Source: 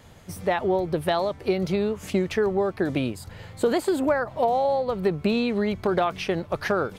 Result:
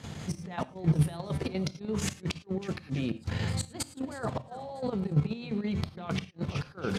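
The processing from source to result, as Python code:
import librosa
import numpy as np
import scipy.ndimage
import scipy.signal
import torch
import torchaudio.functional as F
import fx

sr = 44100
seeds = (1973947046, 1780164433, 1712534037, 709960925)

y = fx.over_compress(x, sr, threshold_db=-33.0, ratio=-1.0)
y = scipy.signal.sosfilt(scipy.signal.butter(2, 6400.0, 'lowpass', fs=sr, output='sos'), y)
y = fx.high_shelf(y, sr, hz=3900.0, db=10.0)
y = fx.hum_notches(y, sr, base_hz=60, count=9)
y = fx.echo_feedback(y, sr, ms=317, feedback_pct=45, wet_db=-16.0)
y = fx.gate_flip(y, sr, shuts_db=-18.0, range_db=-40)
y = scipy.signal.sosfilt(scipy.signal.butter(2, 57.0, 'highpass', fs=sr, output='sos'), y)
y = fx.peak_eq(y, sr, hz=170.0, db=9.0, octaves=1.6)
y = fx.notch(y, sr, hz=600.0, q=13.0)
y = fx.rev_gated(y, sr, seeds[0], gate_ms=130, shape='flat', drr_db=11.5)
y = fx.level_steps(y, sr, step_db=10)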